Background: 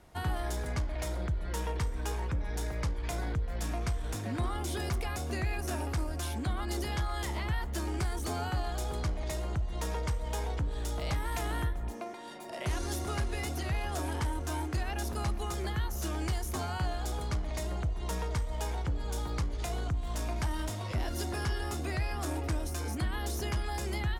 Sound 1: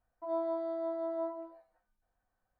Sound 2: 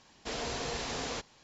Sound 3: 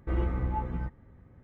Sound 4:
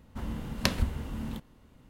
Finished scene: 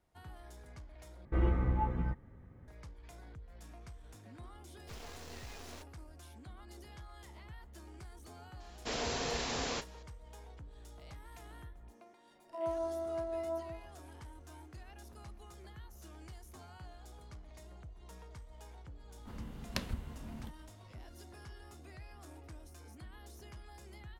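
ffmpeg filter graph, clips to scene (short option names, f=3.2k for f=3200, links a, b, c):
-filter_complex "[2:a]asplit=2[a][b];[0:a]volume=-18.5dB[c];[a]acrusher=bits=5:dc=4:mix=0:aa=0.000001[d];[b]asplit=2[e][f];[f]adelay=34,volume=-13dB[g];[e][g]amix=inputs=2:normalize=0[h];[1:a]asplit=2[i][j];[j]adelay=23,volume=-12.5dB[k];[i][k]amix=inputs=2:normalize=0[l];[c]asplit=2[m][n];[m]atrim=end=1.254[o];[3:a]atrim=end=1.43,asetpts=PTS-STARTPTS,volume=-1dB[p];[n]atrim=start=2.676[q];[d]atrim=end=1.43,asetpts=PTS-STARTPTS,volume=-11dB,afade=t=in:d=0.004:c=hsin,afade=t=out:st=1.426:d=0.004:c=hsin,adelay=4620[r];[h]atrim=end=1.43,asetpts=PTS-STARTPTS,volume=-0.5dB,afade=t=in:d=0.004:c=hsin,afade=t=out:st=1.426:d=0.004:c=hsin,adelay=8600[s];[l]atrim=end=2.59,asetpts=PTS-STARTPTS,volume=-3dB,afade=t=in:d=0.004:c=hsin,afade=t=out:st=2.586:d=0.004:c=hsin,adelay=12310[t];[4:a]atrim=end=1.89,asetpts=PTS-STARTPTS,volume=-10.5dB,afade=t=in:d=0.004:c=hsin,afade=t=out:st=1.886:d=0.004:c=hsin,adelay=19110[u];[o][p]acrossfade=d=0.004:c1=hsin:c2=hsin[v];[v][q]acrossfade=d=0.004:c1=hsin:c2=hsin[w];[w][r][s][t][u]amix=inputs=5:normalize=0"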